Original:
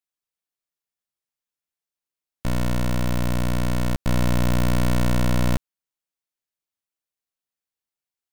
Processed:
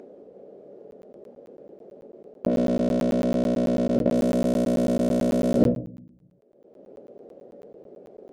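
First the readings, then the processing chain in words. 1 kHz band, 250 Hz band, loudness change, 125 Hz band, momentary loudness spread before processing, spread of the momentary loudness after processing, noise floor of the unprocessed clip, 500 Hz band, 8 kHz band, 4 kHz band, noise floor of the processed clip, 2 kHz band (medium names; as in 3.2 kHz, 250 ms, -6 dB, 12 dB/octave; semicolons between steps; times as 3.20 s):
-4.0 dB, +4.5 dB, +1.0 dB, -8.0 dB, 4 LU, 4 LU, under -85 dBFS, +8.5 dB, -7.5 dB, -8.5 dB, -56 dBFS, -10.0 dB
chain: peaking EQ 2.2 kHz -7 dB 2 oct; simulated room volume 350 m³, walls furnished, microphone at 1.3 m; in parallel at -7 dB: saturation -14 dBFS, distortion -12 dB; on the sum: level-controlled noise filter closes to 580 Hz, open at -0.5 dBFS; reverse; compression 6:1, threshold -17 dBFS, peak gain reduction 13 dB; reverse; resonant low shelf 720 Hz +11 dB, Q 3; upward compressor, threshold -20 dBFS; high-pass 340 Hz 12 dB/octave; crackling interface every 0.11 s, samples 512, zero, from 0.91 s; trim +7.5 dB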